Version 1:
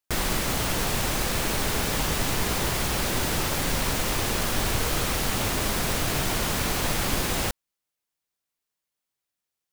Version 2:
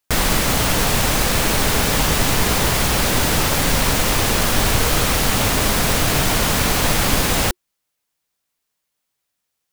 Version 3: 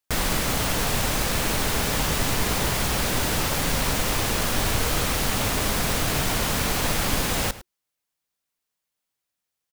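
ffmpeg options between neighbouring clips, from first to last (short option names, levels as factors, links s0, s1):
-af "bandreject=f=360:w=12,volume=2.66"
-filter_complex "[0:a]asplit=2[s0][s1];[s1]adelay=105,volume=0.158,highshelf=f=4000:g=-2.36[s2];[s0][s2]amix=inputs=2:normalize=0,volume=0.473"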